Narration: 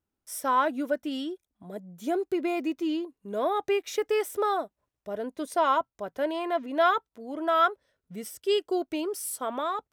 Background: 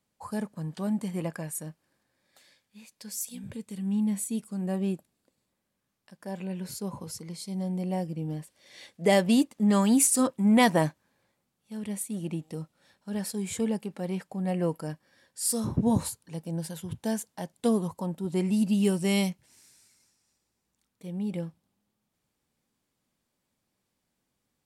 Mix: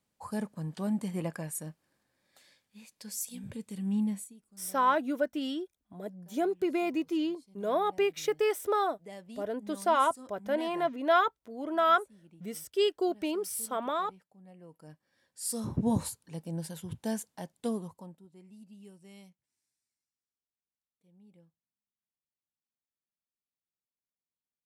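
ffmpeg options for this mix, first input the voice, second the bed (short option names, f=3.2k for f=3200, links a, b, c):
-filter_complex "[0:a]adelay=4300,volume=-1.5dB[a];[1:a]volume=19dB,afade=t=out:st=4.01:d=0.33:silence=0.0749894,afade=t=in:st=14.68:d=1.2:silence=0.0891251,afade=t=out:st=17.25:d=1.04:silence=0.0630957[b];[a][b]amix=inputs=2:normalize=0"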